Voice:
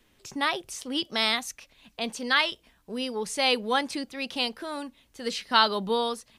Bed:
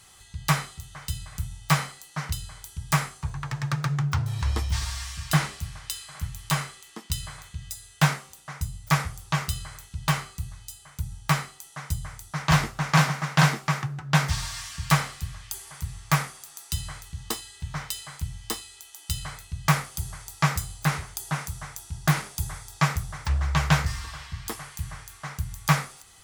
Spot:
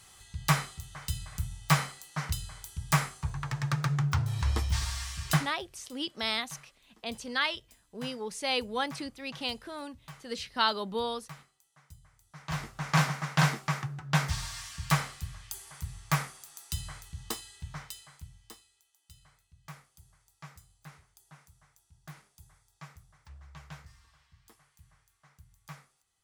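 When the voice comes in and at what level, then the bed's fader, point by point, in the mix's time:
5.05 s, -6.0 dB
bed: 5.33 s -2.5 dB
5.62 s -24 dB
12.12 s -24 dB
12.94 s -5.5 dB
17.52 s -5.5 dB
19 s -26 dB

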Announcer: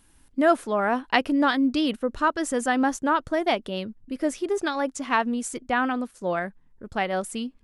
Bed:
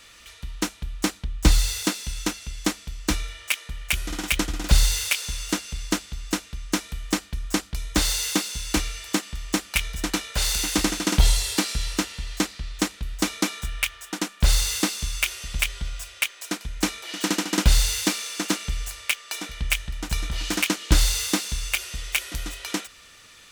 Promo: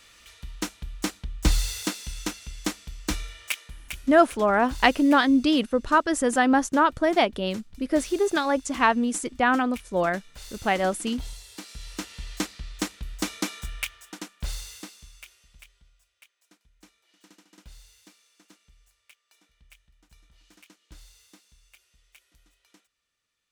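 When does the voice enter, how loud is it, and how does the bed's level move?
3.70 s, +2.5 dB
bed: 3.51 s -4.5 dB
4.32 s -20 dB
11.48 s -20 dB
12.22 s -5 dB
13.73 s -5 dB
15.99 s -31.5 dB

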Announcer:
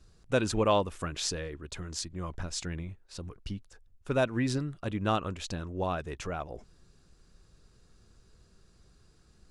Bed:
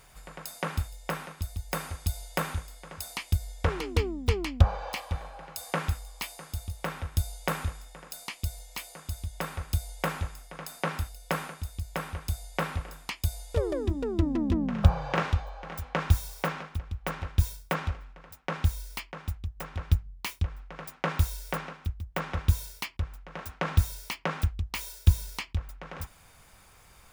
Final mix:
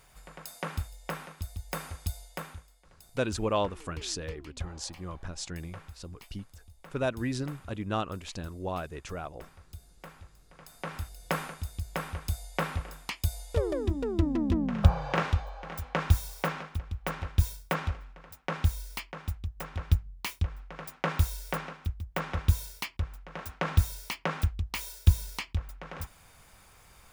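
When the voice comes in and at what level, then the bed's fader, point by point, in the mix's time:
2.85 s, -2.5 dB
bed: 2.06 s -3.5 dB
2.88 s -18 dB
10.26 s -18 dB
11.25 s -0.5 dB

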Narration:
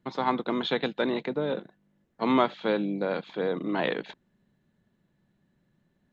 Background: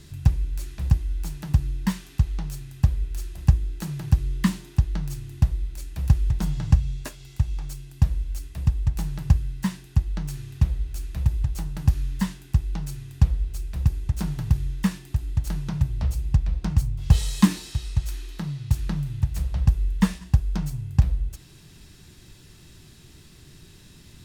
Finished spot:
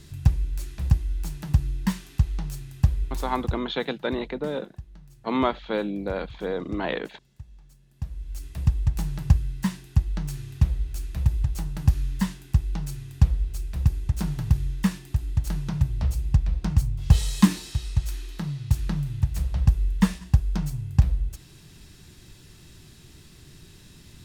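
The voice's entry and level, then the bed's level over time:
3.05 s, -0.5 dB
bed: 3.34 s -0.5 dB
3.64 s -20 dB
7.8 s -20 dB
8.48 s 0 dB

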